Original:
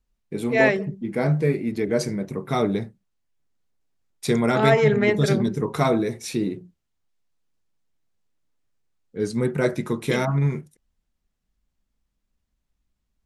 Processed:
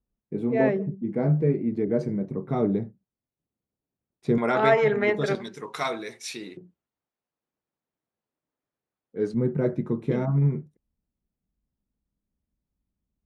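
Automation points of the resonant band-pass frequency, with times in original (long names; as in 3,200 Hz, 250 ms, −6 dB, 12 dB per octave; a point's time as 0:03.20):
resonant band-pass, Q 0.51
220 Hz
from 0:04.38 980 Hz
from 0:05.35 3,100 Hz
from 0:06.57 560 Hz
from 0:09.34 180 Hz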